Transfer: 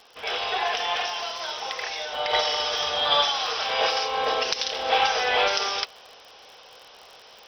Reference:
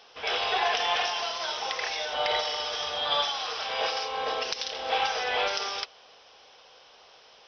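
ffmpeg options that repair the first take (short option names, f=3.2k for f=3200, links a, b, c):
-af "adeclick=t=4,asetnsamples=n=441:p=0,asendcmd='2.33 volume volume -5.5dB',volume=0dB"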